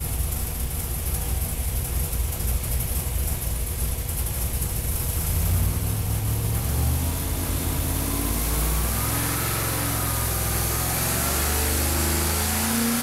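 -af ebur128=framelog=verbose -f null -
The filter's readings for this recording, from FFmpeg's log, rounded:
Integrated loudness:
  I:         -24.4 LUFS
  Threshold: -34.4 LUFS
Loudness range:
  LRA:         3.9 LU
  Threshold: -44.6 LUFS
  LRA low:   -26.5 LUFS
  LRA high:  -22.6 LUFS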